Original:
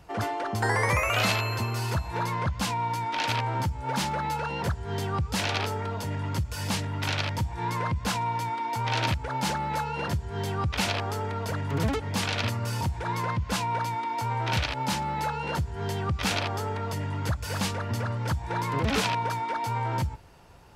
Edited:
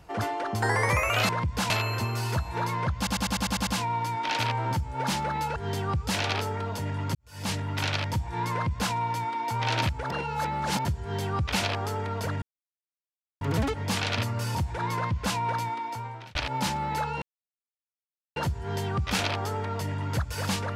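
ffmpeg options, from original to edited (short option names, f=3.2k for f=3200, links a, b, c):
-filter_complex "[0:a]asplit=17[a][b][c][d][e][f][g][h][i][j][k][l][m][n][o][p][q];[a]atrim=end=1.292[r];[b]atrim=start=7.768:end=8.182[s];[c]atrim=start=1.288:end=2.662[t];[d]atrim=start=2.558:end=2.662[u];[e]atrim=start=2.558:end=2.662[v];[f]atrim=start=2.558:end=2.662[w];[g]atrim=start=2.558:end=2.662[x];[h]atrim=start=2.558:end=2.662[y];[i]atrim=start=2.558:end=2.662[z];[j]atrim=start=2.558:end=4.452[aa];[k]atrim=start=4.808:end=6.4,asetpts=PTS-STARTPTS,afade=t=out:st=1.588:d=0.004:c=hsin[ab];[l]atrim=start=6.4:end=9.352,asetpts=PTS-STARTPTS,afade=t=in:d=0.37:c=qua[ac];[m]atrim=start=9.348:end=10.102,asetpts=PTS-STARTPTS,areverse[ad];[n]atrim=start=10.098:end=11.67,asetpts=PTS-STARTPTS,afade=t=out:st=1.568:d=0.004:c=hsin,apad=pad_dur=0.99[ae];[o]atrim=start=11.67:end=14.61,asetpts=PTS-STARTPTS,afade=t=in:d=0.004:c=hsin,afade=t=out:st=2.23:d=0.71[af];[p]atrim=start=14.61:end=15.48,asetpts=PTS-STARTPTS,afade=t=in:d=0.004:c=hsin,afade=t=out:st=0.866:d=0.004:c=hsin,apad=pad_dur=1.14[ag];[q]atrim=start=15.48,asetpts=PTS-STARTPTS,afade=t=in:d=0.004:c=hsin[ah];[r][s]acrossfade=d=0.004:c1=hsin:c2=hsin[ai];[ai][t]acrossfade=d=0.004:c1=hsin:c2=hsin[aj];[aj][u]acrossfade=d=0.004:c1=hsin:c2=hsin[ak];[ak][v]acrossfade=d=0.004:c1=hsin:c2=hsin[al];[al][w]acrossfade=d=0.004:c1=hsin:c2=hsin[am];[am][x]acrossfade=d=0.004:c1=hsin:c2=hsin[an];[an][y]acrossfade=d=0.004:c1=hsin:c2=hsin[ao];[ao][z]acrossfade=d=0.004:c1=hsin:c2=hsin[ap];[ap][aa]acrossfade=d=0.004:c1=hsin:c2=hsin[aq];[ab][ac]concat=n=2:v=0:a=1[ar];[aq][ar]acrossfade=d=0.004:c1=hsin:c2=hsin[as];[as][ad]acrossfade=d=0.004:c1=hsin:c2=hsin[at];[ae][af][ag][ah]concat=n=4:v=0:a=1[au];[at][au]acrossfade=d=0.004:c1=hsin:c2=hsin"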